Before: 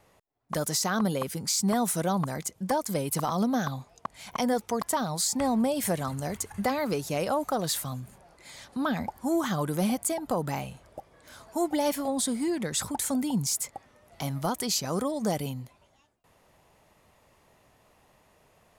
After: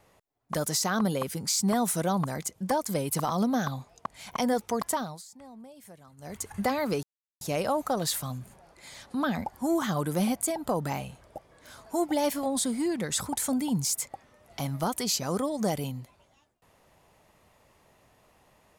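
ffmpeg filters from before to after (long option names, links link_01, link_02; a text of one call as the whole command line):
ffmpeg -i in.wav -filter_complex "[0:a]asplit=4[link_01][link_02][link_03][link_04];[link_01]atrim=end=5.23,asetpts=PTS-STARTPTS,afade=type=out:start_time=4.89:duration=0.34:silence=0.0794328[link_05];[link_02]atrim=start=5.23:end=6.17,asetpts=PTS-STARTPTS,volume=-22dB[link_06];[link_03]atrim=start=6.17:end=7.03,asetpts=PTS-STARTPTS,afade=type=in:duration=0.34:silence=0.0794328,afade=type=out:start_time=0.856:duration=0.004:curve=hsin,apad=pad_dur=0.38[link_07];[link_04]atrim=start=7.03,asetpts=PTS-STARTPTS,afade=type=in:duration=0.004:curve=hsin[link_08];[link_05][link_06][link_07][link_08]concat=n=4:v=0:a=1" out.wav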